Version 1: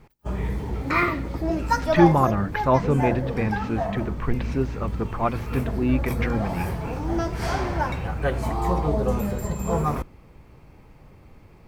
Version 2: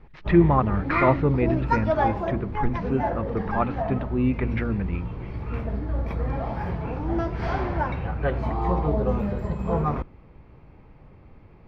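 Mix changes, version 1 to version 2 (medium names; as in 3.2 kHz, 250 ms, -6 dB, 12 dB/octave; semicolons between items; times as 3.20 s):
speech: entry -1.65 s; master: add distance through air 280 m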